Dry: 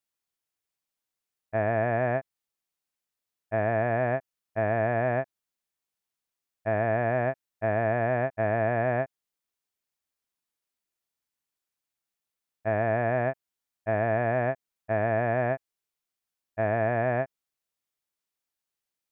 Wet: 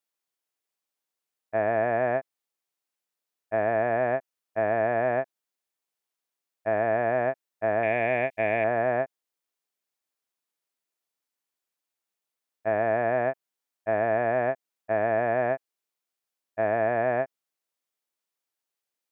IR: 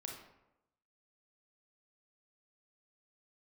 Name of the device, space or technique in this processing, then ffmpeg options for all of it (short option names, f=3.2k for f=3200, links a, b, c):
filter by subtraction: -filter_complex "[0:a]asplit=2[a][b];[b]lowpass=440,volume=-1[c];[a][c]amix=inputs=2:normalize=0,asettb=1/sr,asplit=3[d][e][f];[d]atrim=end=7.834[g];[e]atrim=start=7.83:end=8.64,asetpts=PTS-STARTPTS,afade=t=in:d=0.004:c=qsin,afade=t=out:st=0.806:d=0.004:c=qsin,highshelf=f=1.8k:t=q:w=3:g=7.5[h];[f]atrim=start=8.636[i];[g][h]acrossfade=d=0.004:c1=hsin:c2=qsin[j];[j][i]acrossfade=d=0.004:c1=qsin:c2=hsin"